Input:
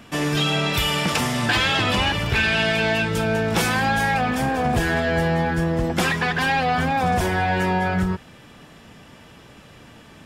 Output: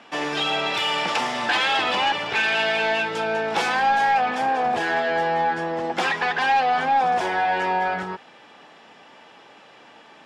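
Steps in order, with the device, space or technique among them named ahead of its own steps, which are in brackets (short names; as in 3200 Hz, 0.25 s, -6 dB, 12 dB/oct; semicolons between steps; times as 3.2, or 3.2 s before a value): intercom (BPF 400–4900 Hz; bell 830 Hz +7 dB 0.29 oct; soft clip -12 dBFS, distortion -21 dB)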